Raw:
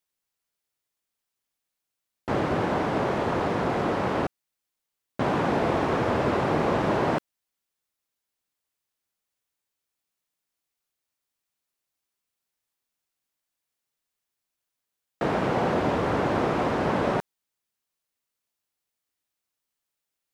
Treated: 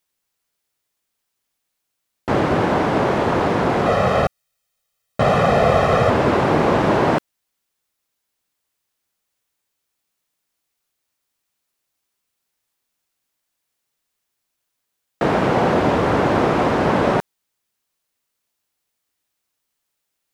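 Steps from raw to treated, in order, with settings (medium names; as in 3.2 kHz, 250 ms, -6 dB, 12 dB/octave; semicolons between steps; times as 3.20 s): 3.86–6.10 s: comb 1.6 ms, depth 81%; trim +7.5 dB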